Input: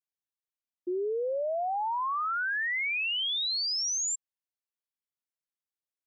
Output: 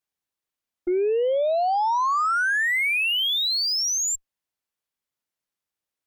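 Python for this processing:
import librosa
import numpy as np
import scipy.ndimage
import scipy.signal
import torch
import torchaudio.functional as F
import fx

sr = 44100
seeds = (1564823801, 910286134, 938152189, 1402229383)

y = fx.high_shelf(x, sr, hz=3500.0, db=-3.5)
y = fx.cheby_harmonics(y, sr, harmonics=(2, 6), levels_db=(-32, -25), full_scale_db=-27.0)
y = y * 10.0 ** (8.5 / 20.0)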